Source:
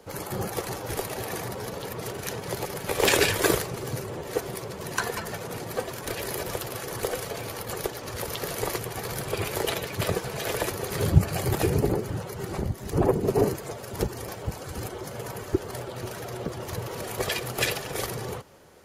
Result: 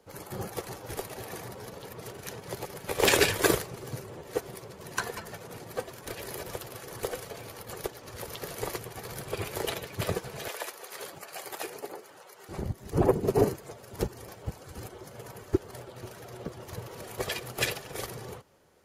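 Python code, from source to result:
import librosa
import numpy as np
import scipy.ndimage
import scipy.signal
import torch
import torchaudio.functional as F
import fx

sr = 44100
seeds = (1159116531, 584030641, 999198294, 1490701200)

y = fx.highpass(x, sr, hz=640.0, slope=12, at=(10.48, 12.49))
y = fx.upward_expand(y, sr, threshold_db=-38.0, expansion=1.5)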